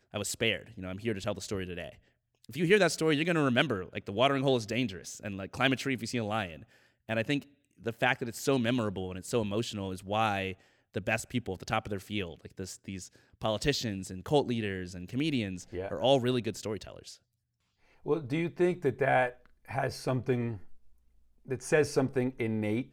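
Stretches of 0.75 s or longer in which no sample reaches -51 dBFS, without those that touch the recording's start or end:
17.17–18.04

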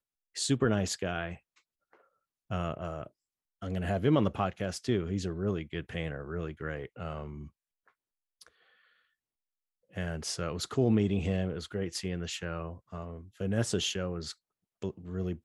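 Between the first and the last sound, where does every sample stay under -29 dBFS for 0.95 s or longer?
1.28–2.51
7.18–9.98

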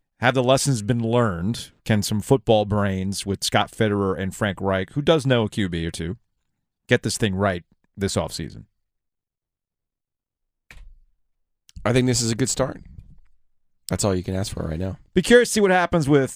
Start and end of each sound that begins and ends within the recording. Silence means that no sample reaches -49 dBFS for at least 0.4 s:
6.89–8.64
10.71–11.01
11.69–13.34

